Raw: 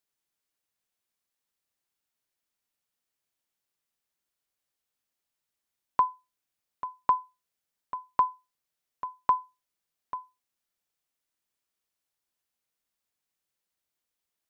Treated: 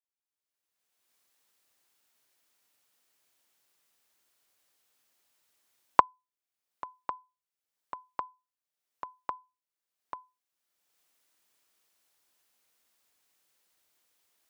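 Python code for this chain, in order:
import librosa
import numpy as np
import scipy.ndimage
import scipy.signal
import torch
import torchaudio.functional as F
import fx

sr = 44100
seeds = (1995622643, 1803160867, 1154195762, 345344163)

y = fx.recorder_agc(x, sr, target_db=-19.0, rise_db_per_s=26.0, max_gain_db=30)
y = scipy.signal.sosfilt(scipy.signal.butter(2, 95.0, 'highpass', fs=sr, output='sos'), y)
y = fx.peak_eq(y, sr, hz=160.0, db=-7.0, octaves=1.1)
y = F.gain(torch.from_numpy(y), -18.0).numpy()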